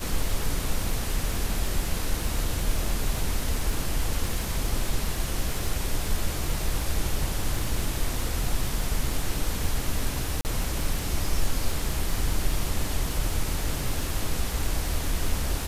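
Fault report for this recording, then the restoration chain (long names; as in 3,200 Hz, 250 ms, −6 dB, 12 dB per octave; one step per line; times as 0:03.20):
surface crackle 50 per second −31 dBFS
0:10.41–0:10.45: drop-out 39 ms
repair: click removal
repair the gap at 0:10.41, 39 ms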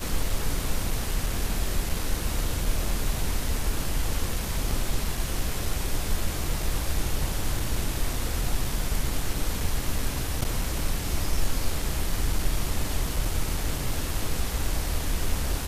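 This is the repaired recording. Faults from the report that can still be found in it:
none of them is left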